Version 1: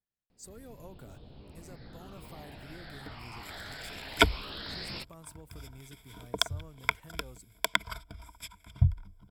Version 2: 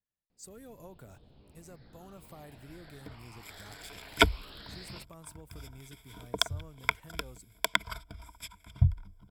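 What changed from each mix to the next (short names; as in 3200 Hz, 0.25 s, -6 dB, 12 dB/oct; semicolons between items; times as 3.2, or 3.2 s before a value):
first sound -8.0 dB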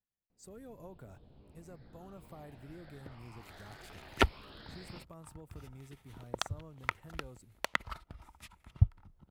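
second sound: remove ripple EQ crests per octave 1.7, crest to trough 16 dB; master: add high shelf 2400 Hz -9 dB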